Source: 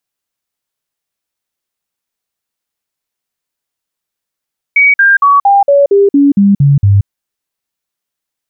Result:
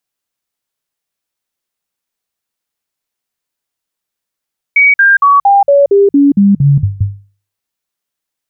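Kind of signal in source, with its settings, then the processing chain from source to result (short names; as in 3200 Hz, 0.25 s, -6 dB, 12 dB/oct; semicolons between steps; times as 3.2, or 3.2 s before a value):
stepped sine 2260 Hz down, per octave 2, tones 10, 0.18 s, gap 0.05 s -3.5 dBFS
notches 50/100/150 Hz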